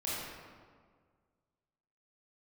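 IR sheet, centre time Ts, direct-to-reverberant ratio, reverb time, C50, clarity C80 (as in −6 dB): 122 ms, −8.5 dB, 1.8 s, −3.5 dB, −0.5 dB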